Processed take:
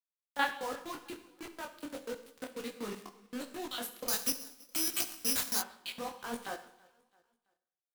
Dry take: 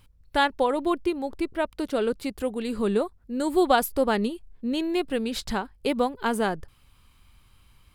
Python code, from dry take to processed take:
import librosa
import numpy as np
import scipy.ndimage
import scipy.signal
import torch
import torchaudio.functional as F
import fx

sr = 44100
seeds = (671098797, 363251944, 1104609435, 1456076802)

y = fx.peak_eq(x, sr, hz=1300.0, db=6.0, octaves=1.6)
y = fx.filter_lfo_highpass(y, sr, shape='square', hz=4.1, low_hz=260.0, high_hz=3300.0, q=1.4)
y = fx.low_shelf(y, sr, hz=440.0, db=-6.0)
y = fx.level_steps(y, sr, step_db=16)
y = y + 0.35 * np.pad(y, (int(4.0 * sr / 1000.0), 0))[:len(y)]
y = fx.quant_dither(y, sr, seeds[0], bits=6, dither='none')
y = fx.echo_feedback(y, sr, ms=332, feedback_pct=41, wet_db=-24.0)
y = fx.rev_schroeder(y, sr, rt60_s=0.74, comb_ms=30, drr_db=9.5)
y = fx.resample_bad(y, sr, factor=8, down='none', up='zero_stuff', at=(4.08, 5.6))
y = fx.detune_double(y, sr, cents=48)
y = y * librosa.db_to_amplitude(-4.0)